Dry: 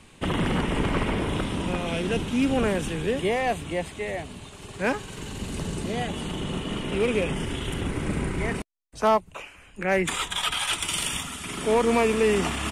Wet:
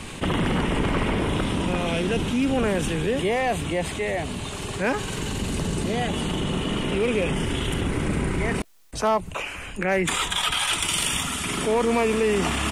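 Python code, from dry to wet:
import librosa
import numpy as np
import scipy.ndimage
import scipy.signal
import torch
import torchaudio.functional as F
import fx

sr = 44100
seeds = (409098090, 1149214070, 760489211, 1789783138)

y = fx.env_flatten(x, sr, amount_pct=50)
y = F.gain(torch.from_numpy(y), -1.5).numpy()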